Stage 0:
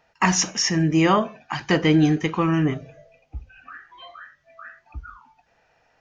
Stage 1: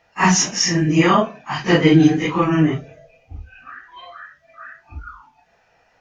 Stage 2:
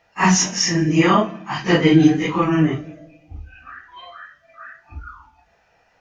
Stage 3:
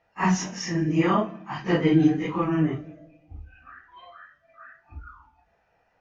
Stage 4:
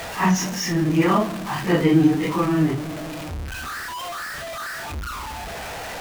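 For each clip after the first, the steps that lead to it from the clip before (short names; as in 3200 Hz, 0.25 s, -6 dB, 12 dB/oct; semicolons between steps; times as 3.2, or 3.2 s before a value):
phase scrambler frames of 0.1 s; gain +4 dB
reverb RT60 0.85 s, pre-delay 5 ms, DRR 16 dB; gain -1 dB
high shelf 2800 Hz -11 dB; gain -6 dB
zero-crossing step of -28.5 dBFS; gain +2 dB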